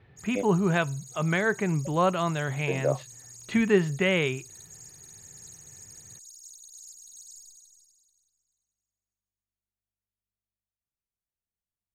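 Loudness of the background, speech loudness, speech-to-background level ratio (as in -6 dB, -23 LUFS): -45.5 LUFS, -26.5 LUFS, 19.0 dB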